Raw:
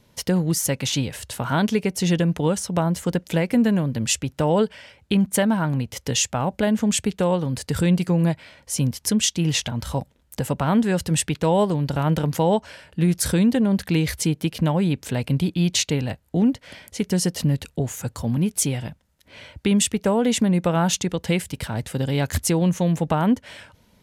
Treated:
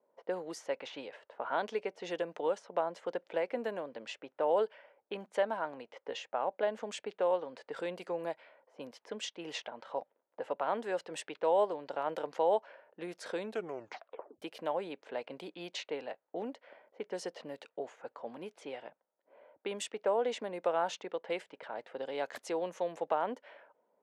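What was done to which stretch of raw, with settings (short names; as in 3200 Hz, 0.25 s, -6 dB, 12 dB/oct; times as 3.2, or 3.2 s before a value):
13.41 tape stop 1.01 s
whole clip: tilt -4 dB/oct; low-pass opened by the level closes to 820 Hz, open at -6 dBFS; HPF 500 Hz 24 dB/oct; gain -8.5 dB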